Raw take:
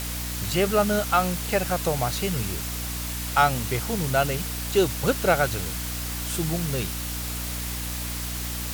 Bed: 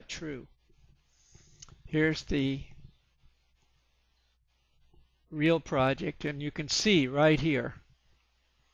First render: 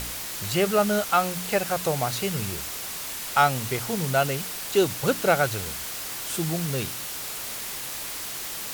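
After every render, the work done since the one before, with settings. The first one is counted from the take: de-hum 60 Hz, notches 5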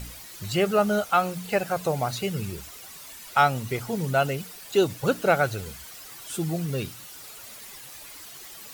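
denoiser 12 dB, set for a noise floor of -34 dBFS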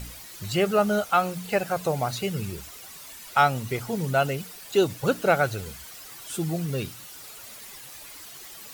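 nothing audible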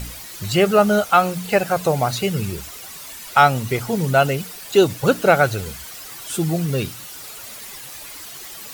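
gain +7 dB; limiter -1 dBFS, peak gain reduction 1 dB

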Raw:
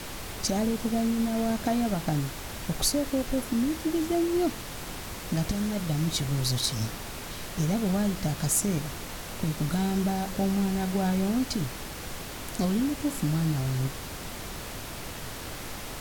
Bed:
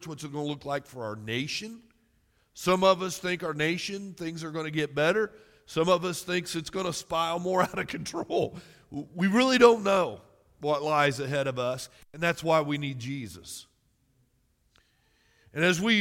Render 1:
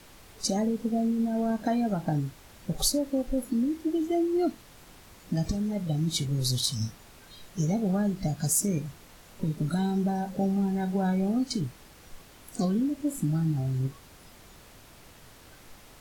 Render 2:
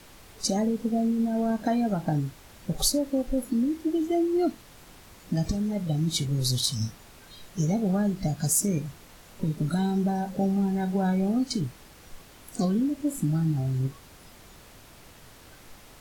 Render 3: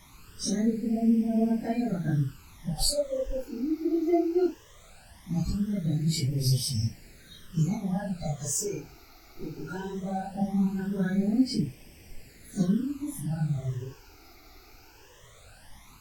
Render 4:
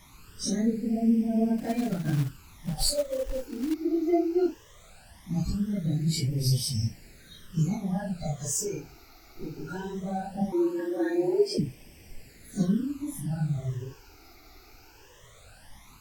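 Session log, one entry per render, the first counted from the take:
noise print and reduce 14 dB
gain +1.5 dB
phase scrambler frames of 0.1 s; phaser stages 12, 0.19 Hz, lowest notch 170–1300 Hz
1.58–3.74 short-mantissa float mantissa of 2-bit; 10.52–11.58 frequency shift +150 Hz

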